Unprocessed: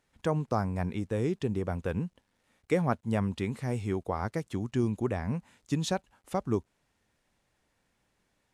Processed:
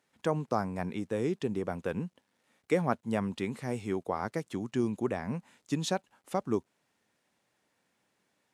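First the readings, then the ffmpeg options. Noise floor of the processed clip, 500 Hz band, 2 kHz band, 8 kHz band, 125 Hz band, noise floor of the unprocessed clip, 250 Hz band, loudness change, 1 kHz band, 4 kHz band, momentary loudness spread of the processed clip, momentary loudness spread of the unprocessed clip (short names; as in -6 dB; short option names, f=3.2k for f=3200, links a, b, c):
-77 dBFS, 0.0 dB, 0.0 dB, 0.0 dB, -5.5 dB, -76 dBFS, -1.5 dB, -1.5 dB, 0.0 dB, 0.0 dB, 6 LU, 6 LU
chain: -af "highpass=170"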